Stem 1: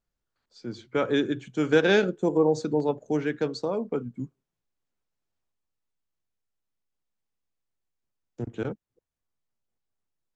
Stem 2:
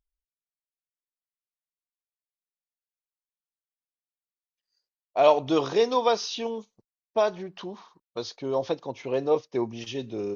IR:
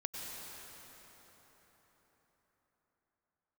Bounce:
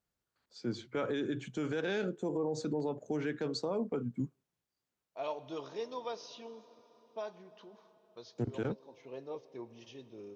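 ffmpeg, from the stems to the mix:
-filter_complex "[0:a]acompressor=threshold=-26dB:ratio=5,volume=0dB,asplit=2[link_01][link_02];[1:a]bandreject=frequency=740:width=20,flanger=delay=3.4:depth=6:regen=-75:speed=0.34:shape=triangular,volume=-14.5dB,asplit=2[link_03][link_04];[link_04]volume=-13.5dB[link_05];[link_02]apad=whole_len=456776[link_06];[link_03][link_06]sidechaincompress=threshold=-35dB:ratio=8:attack=16:release=514[link_07];[2:a]atrim=start_sample=2205[link_08];[link_05][link_08]afir=irnorm=-1:irlink=0[link_09];[link_01][link_07][link_09]amix=inputs=3:normalize=0,highpass=69,alimiter=level_in=2dB:limit=-24dB:level=0:latency=1:release=19,volume=-2dB"

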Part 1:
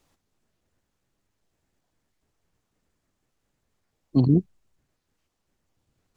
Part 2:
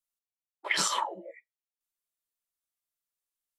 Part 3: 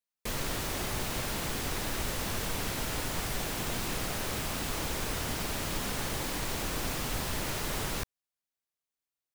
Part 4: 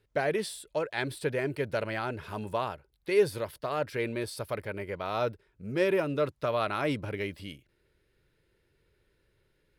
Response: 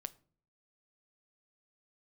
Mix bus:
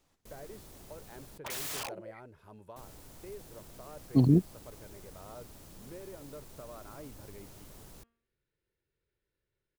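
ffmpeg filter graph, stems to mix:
-filter_complex "[0:a]volume=-3.5dB[link_01];[1:a]aeval=exprs='(mod(33.5*val(0)+1,2)-1)/33.5':channel_layout=same,adelay=800,volume=-2.5dB[link_02];[2:a]equalizer=frequency=2100:width_type=o:width=2.6:gain=-10,bandreject=frequency=231.7:width_type=h:width=4,bandreject=frequency=463.4:width_type=h:width=4,bandreject=frequency=695.1:width_type=h:width=4,bandreject=frequency=926.8:width_type=h:width=4,bandreject=frequency=1158.5:width_type=h:width=4,bandreject=frequency=1390.2:width_type=h:width=4,bandreject=frequency=1621.9:width_type=h:width=4,bandreject=frequency=1853.6:width_type=h:width=4,bandreject=frequency=2085.3:width_type=h:width=4,bandreject=frequency=2317:width_type=h:width=4,bandreject=frequency=2548.7:width_type=h:width=4,bandreject=frequency=2780.4:width_type=h:width=4,bandreject=frequency=3012.1:width_type=h:width=4,bandreject=frequency=3243.8:width_type=h:width=4,aeval=exprs='0.0335*(abs(mod(val(0)/0.0335+3,4)-2)-1)':channel_layout=same,volume=-15.5dB,asplit=3[link_03][link_04][link_05];[link_03]atrim=end=1.38,asetpts=PTS-STARTPTS,afade=type=out:start_time=1.376:duration=0.004:curve=hsin[link_06];[link_04]atrim=start=1.38:end=2.76,asetpts=PTS-STARTPTS,volume=0[link_07];[link_05]atrim=start=2.76,asetpts=PTS-STARTPTS,afade=type=in:duration=0.004:curve=hsin[link_08];[link_06][link_07][link_08]concat=n=3:v=0:a=1[link_09];[3:a]acrossover=split=1400|5700[link_10][link_11][link_12];[link_10]acompressor=threshold=-28dB:ratio=4[link_13];[link_11]acompressor=threshold=-57dB:ratio=4[link_14];[link_12]acompressor=threshold=-55dB:ratio=4[link_15];[link_13][link_14][link_15]amix=inputs=3:normalize=0,adelay=150,volume=-16dB[link_16];[link_01][link_02][link_09][link_16]amix=inputs=4:normalize=0"

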